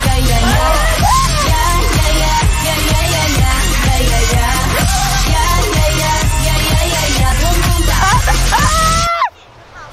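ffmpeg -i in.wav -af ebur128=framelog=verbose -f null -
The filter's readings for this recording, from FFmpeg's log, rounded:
Integrated loudness:
  I:         -12.5 LUFS
  Threshold: -22.6 LUFS
Loudness range:
  LRA:         0.6 LU
  Threshold: -32.7 LUFS
  LRA low:   -12.9 LUFS
  LRA high:  -12.3 LUFS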